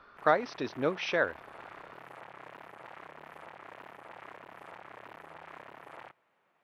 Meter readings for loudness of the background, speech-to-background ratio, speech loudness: -49.5 LUFS, 19.0 dB, -30.5 LUFS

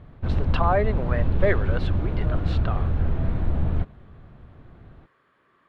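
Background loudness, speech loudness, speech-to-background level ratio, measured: -26.5 LUFS, -29.0 LUFS, -2.5 dB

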